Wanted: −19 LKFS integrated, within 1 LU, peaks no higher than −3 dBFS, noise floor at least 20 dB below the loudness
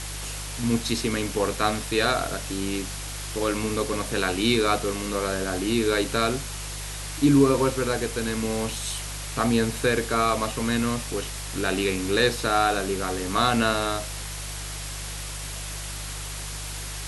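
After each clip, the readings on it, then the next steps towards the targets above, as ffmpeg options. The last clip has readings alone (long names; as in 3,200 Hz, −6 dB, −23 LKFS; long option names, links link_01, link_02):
mains hum 50 Hz; hum harmonics up to 150 Hz; level of the hum −34 dBFS; background noise floor −34 dBFS; target noise floor −46 dBFS; integrated loudness −25.5 LKFS; sample peak −7.5 dBFS; target loudness −19.0 LKFS
→ -af "bandreject=frequency=50:width_type=h:width=4,bandreject=frequency=100:width_type=h:width=4,bandreject=frequency=150:width_type=h:width=4"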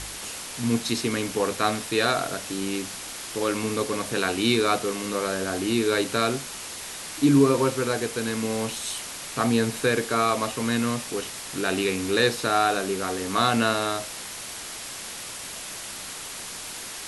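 mains hum none found; background noise floor −37 dBFS; target noise floor −46 dBFS
→ -af "afftdn=noise_reduction=9:noise_floor=-37"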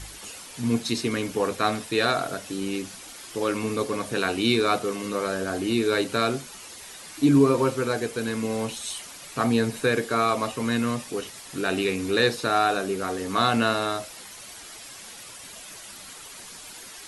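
background noise floor −43 dBFS; target noise floor −45 dBFS
→ -af "afftdn=noise_reduction=6:noise_floor=-43"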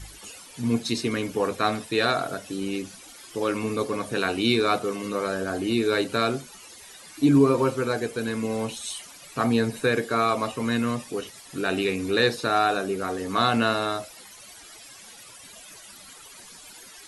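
background noise floor −47 dBFS; integrated loudness −25.5 LKFS; sample peak −7.5 dBFS; target loudness −19.0 LKFS
→ -af "volume=6.5dB,alimiter=limit=-3dB:level=0:latency=1"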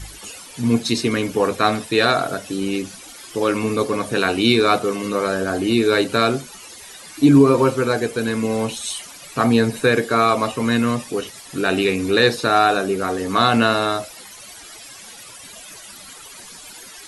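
integrated loudness −19.0 LKFS; sample peak −3.0 dBFS; background noise floor −40 dBFS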